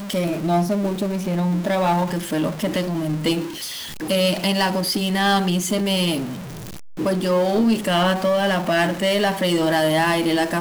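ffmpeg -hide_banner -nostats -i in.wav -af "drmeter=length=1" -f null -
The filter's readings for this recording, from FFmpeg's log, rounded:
Channel 1: DR: 5.0
Overall DR: 5.0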